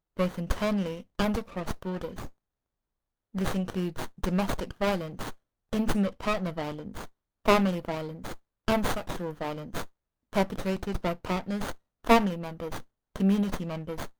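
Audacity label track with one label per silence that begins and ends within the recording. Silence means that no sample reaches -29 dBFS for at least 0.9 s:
2.250000	3.360000	silence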